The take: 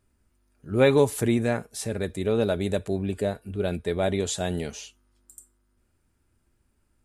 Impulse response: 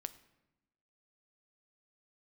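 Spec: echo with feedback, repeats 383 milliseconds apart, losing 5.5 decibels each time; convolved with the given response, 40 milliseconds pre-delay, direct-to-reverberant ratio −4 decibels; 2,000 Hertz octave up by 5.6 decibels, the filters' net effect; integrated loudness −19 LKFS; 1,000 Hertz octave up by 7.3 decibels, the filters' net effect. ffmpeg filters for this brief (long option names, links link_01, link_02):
-filter_complex "[0:a]equalizer=frequency=1000:width_type=o:gain=9,equalizer=frequency=2000:width_type=o:gain=4,aecho=1:1:383|766|1149|1532|1915|2298|2681:0.531|0.281|0.149|0.079|0.0419|0.0222|0.0118,asplit=2[link_01][link_02];[1:a]atrim=start_sample=2205,adelay=40[link_03];[link_02][link_03]afir=irnorm=-1:irlink=0,volume=7dB[link_04];[link_01][link_04]amix=inputs=2:normalize=0,volume=-1.5dB"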